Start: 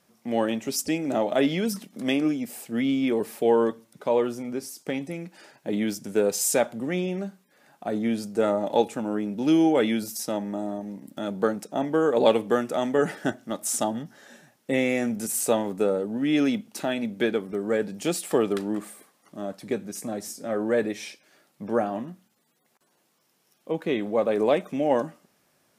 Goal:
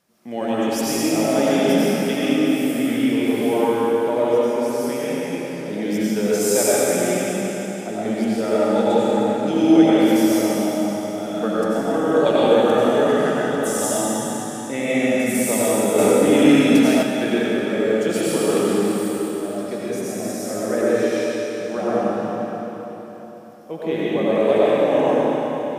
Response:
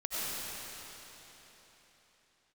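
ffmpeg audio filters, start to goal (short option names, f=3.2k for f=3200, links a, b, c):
-filter_complex "[0:a]asettb=1/sr,asplit=3[a][b][c];[a]atrim=end=18.444[d];[b]atrim=start=18.44:end=19.39,asetpts=PTS-STARTPTS,afade=t=in:d=0.004:c=qsin,afade=t=out:st=0.946:d=0.004:c=qsin,highshelf=f=6.3k:g=7.5[e];[c]atrim=start=19.386[f];[d][e]acrossfade=d=0.004:c1=hsin:c2=qsin[g];[g][f]acrossfade=d=0.004:c1=qsin:c2=hsin[h];[1:a]atrim=start_sample=2205[i];[h][i]afir=irnorm=-1:irlink=0,asettb=1/sr,asplit=3[j][k][l];[j]atrim=end=15.984[m];[k]atrim=start=15.98:end=17.03,asetpts=PTS-STARTPTS,afade=t=in:d=0.004:c=qsin,afade=t=out:st=1.046:d=0.004:c=qsin,acontrast=30[n];[l]atrim=start=17.026[o];[m][n]acrossfade=d=0.004:c1=hsin:c2=qsin[p];[p][o]acrossfade=d=0.004:c1=qsin:c2=hsin"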